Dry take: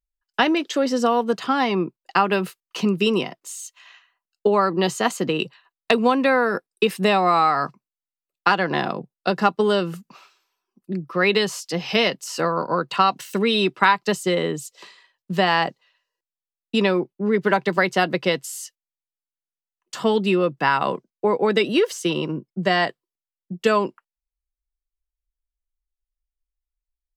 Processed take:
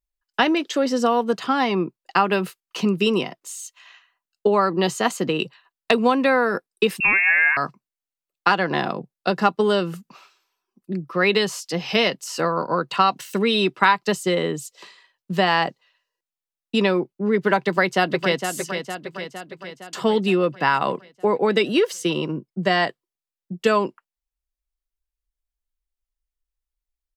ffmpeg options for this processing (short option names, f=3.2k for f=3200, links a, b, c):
-filter_complex "[0:a]asettb=1/sr,asplit=3[a][b][c];[a]atrim=end=7.004[d];[b]atrim=start=7:end=7.57,asetpts=PTS-STARTPTS,afade=t=in:d=0.004:c=qsin,afade=t=out:st=0.566:d=0.004:c=qsin,lowpass=f=2.5k:t=q:w=0.5098,lowpass=f=2.5k:t=q:w=0.6013,lowpass=f=2.5k:t=q:w=0.9,lowpass=f=2.5k:t=q:w=2.563,afreqshift=-2900[e];[c]atrim=start=7.566[f];[d][e]acrossfade=d=0.004:c1=hsin:c2=qsin[g];[g][f]acrossfade=d=0.004:c1=qsin:c2=hsin,asplit=2[h][i];[i]afade=t=in:st=17.6:d=0.01,afade=t=out:st=18.48:d=0.01,aecho=0:1:460|920|1380|1840|2300|2760|3220|3680:0.421697|0.253018|0.151811|0.0910864|0.0546519|0.0327911|0.0196747|0.0118048[j];[h][j]amix=inputs=2:normalize=0"